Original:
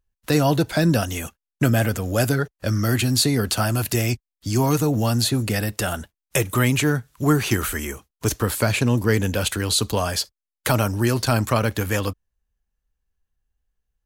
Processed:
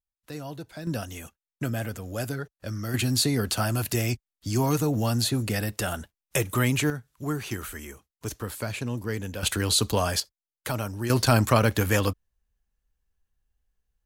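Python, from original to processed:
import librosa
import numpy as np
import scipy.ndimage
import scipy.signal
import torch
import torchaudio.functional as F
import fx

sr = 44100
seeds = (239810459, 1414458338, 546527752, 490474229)

y = fx.gain(x, sr, db=fx.steps((0.0, -19.0), (0.87, -11.0), (2.94, -4.5), (6.9, -11.5), (9.43, -2.0), (10.2, -10.0), (11.1, 0.0)))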